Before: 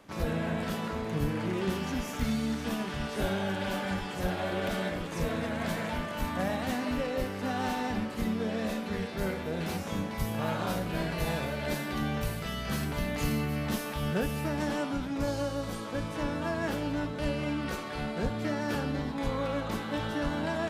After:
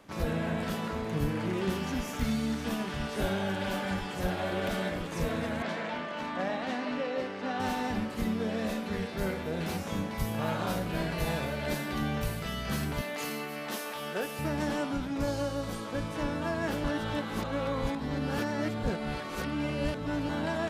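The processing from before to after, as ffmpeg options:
-filter_complex "[0:a]asettb=1/sr,asplit=3[a][b][c];[a]atrim=end=5.624[d];[b]atrim=start=5.62:end=7.6,asetpts=PTS-STARTPTS,afade=t=in:d=0.004:c=qsin,afade=t=out:st=1.976:d=0.004:c=qsin,highpass=240,lowpass=4.6k[e];[c]atrim=start=7.596[f];[d][e]acrossfade=d=0.004:c1=hsin:c2=qsin[g];[g][f]acrossfade=d=0.004:c1=qsin:c2=hsin,asettb=1/sr,asplit=3[h][i][j];[h]atrim=end=13.014[k];[i]atrim=start=13.01:end=14.39,asetpts=PTS-STARTPTS,afade=t=in:d=0.004:c=qsin,afade=t=out:st=1.376:d=0.004:c=qsin,highpass=380[l];[j]atrim=start=14.386[m];[k][l]acrossfade=d=0.004:c1=hsin:c2=qsin[n];[n][m]acrossfade=d=0.004:c1=qsin:c2=hsin,asplit=3[o][p][q];[o]atrim=end=16.842[r];[p]atrim=start=16.838:end=20.292,asetpts=PTS-STARTPTS,areverse[s];[q]atrim=start=20.288[t];[r][s]acrossfade=d=0.004:c1=hsin:c2=hsin[u];[u][t]acrossfade=d=0.004:c1=hsin:c2=hsin"

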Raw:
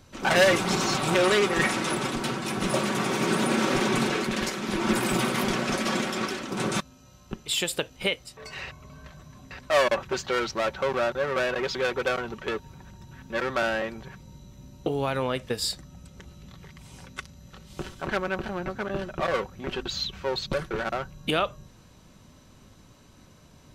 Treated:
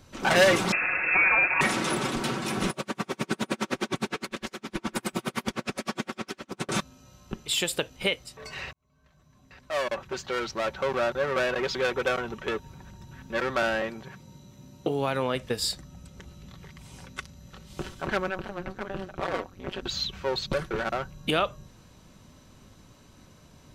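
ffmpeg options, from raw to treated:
-filter_complex "[0:a]asettb=1/sr,asplit=3[a][b][c];[a]atrim=end=0.724[d];[b]atrim=start=0.72:end=1.61,asetpts=PTS-STARTPTS,afade=t=in:d=0.004:c=qsin,afade=t=out:st=0.886:d=0.004:c=qsin,lowpass=f=2.4k:t=q:w=0.5098,lowpass=f=2.4k:t=q:w=0.6013,lowpass=f=2.4k:t=q:w=0.9,lowpass=f=2.4k:t=q:w=2.563,afreqshift=-2800[e];[c]atrim=start=1.606[f];[d][e]acrossfade=d=0.004:c1=hsin:c2=qsin[g];[g][f]acrossfade=d=0.004:c1=qsin:c2=hsin,asettb=1/sr,asplit=3[h][i][j];[h]atrim=end=2.704[k];[i]atrim=start=2.7:end=6.69,asetpts=PTS-STARTPTS,afade=t=in:d=0.004:c=qsin,afade=t=out:st=3.986:d=0.004:c=qsin,aeval=exprs='val(0)*pow(10,-39*(0.5-0.5*cos(2*PI*9.7*n/s))/20)':c=same[l];[j]atrim=start=6.686[m];[k][l]acrossfade=d=0.004:c1=hsin:c2=qsin[n];[n][m]acrossfade=d=0.004:c1=qsin:c2=hsin,asettb=1/sr,asplit=3[o][p][q];[o]atrim=end=11.904[r];[p]atrim=start=11.9:end=12.66,asetpts=PTS-STARTPTS,afade=t=in:d=0.004:c=qsin,afade=t=out:st=0.756:d=0.004:c=qsin,bandreject=f=4.5k:w=12[s];[q]atrim=start=12.656[t];[r][s]acrossfade=d=0.004:c1=hsin:c2=qsin[u];[u][t]acrossfade=d=0.004:c1=qsin:c2=hsin,asettb=1/sr,asplit=3[v][w][x];[v]atrim=end=13.904[y];[w]atrim=start=13.9:end=15.35,asetpts=PTS-STARTPTS,afade=t=in:d=0.004:c=qsin,afade=t=out:st=1.446:d=0.004:c=qsin,highpass=110[z];[x]atrim=start=15.346[aa];[y][z]acrossfade=d=0.004:c1=hsin:c2=qsin[ab];[ab][aa]acrossfade=d=0.004:c1=qsin:c2=hsin,asplit=3[ac][ad][ae];[ac]afade=t=out:st=18.29:d=0.02[af];[ad]tremolo=f=190:d=0.974,afade=t=in:st=18.29:d=0.02,afade=t=out:st=19.82:d=0.02[ag];[ae]afade=t=in:st=19.82:d=0.02[ah];[af][ag][ah]amix=inputs=3:normalize=0,asplit=2[ai][aj];[ai]atrim=end=8.73,asetpts=PTS-STARTPTS,afade=t=out:st=8.726:d=0.004:c=hsin[ak];[aj]atrim=start=8.73,asetpts=PTS-STARTPTS,afade=t=in:d=2.47[al];[ak][al]concat=n=2:v=0:a=1"

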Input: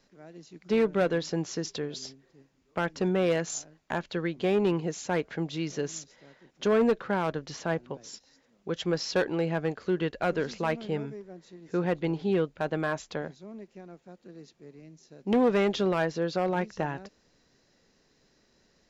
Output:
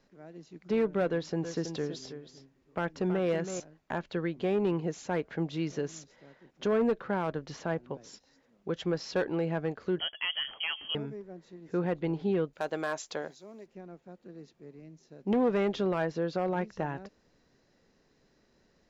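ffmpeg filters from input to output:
-filter_complex "[0:a]asettb=1/sr,asplit=3[a][b][c];[a]atrim=end=1.084[d];[b]atrim=start=1.08:end=3.6,asetpts=PTS-STARTPTS,afade=t=in:d=0.004:c=qsin,afade=t=out:st=2.516:d=0.004:c=qsin,aecho=1:1:325:0.299,atrim=end_sample=111132[e];[c]atrim=start=3.596[f];[d][e]acrossfade=d=0.004:c1=hsin:c2=qsin[g];[g][f]acrossfade=d=0.004:c1=qsin:c2=hsin,asettb=1/sr,asplit=3[h][i][j];[h]atrim=end=9.994[k];[i]atrim=start=9.99:end=10.95,asetpts=PTS-STARTPTS,afade=t=in:d=0.004:c=qsin,afade=t=out:st=0.956:d=0.004:c=qsin,lowpass=f=2.9k:t=q:w=0.5098,lowpass=f=2.9k:t=q:w=0.6013,lowpass=f=2.9k:t=q:w=0.9,lowpass=f=2.9k:t=q:w=2.563,afreqshift=-3400[l];[j]atrim=start=10.946[m];[k][l]acrossfade=d=0.004:c1=hsin:c2=qsin[n];[n][m]acrossfade=d=0.004:c1=qsin:c2=hsin,asettb=1/sr,asplit=3[o][p][q];[o]atrim=end=12.534[r];[p]atrim=start=12.53:end=13.66,asetpts=PTS-STARTPTS,afade=t=in:d=0.004:c=qsin,afade=t=out:st=1.126:d=0.004:c=qsin,bass=f=250:g=-13,treble=f=4k:g=14[s];[q]atrim=start=13.656[t];[r][s]acrossfade=d=0.004:c1=hsin:c2=qsin[u];[u][t]acrossfade=d=0.004:c1=qsin:c2=hsin,highshelf=f=2.9k:g=-8.5,alimiter=limit=-21dB:level=0:latency=1:release=250"

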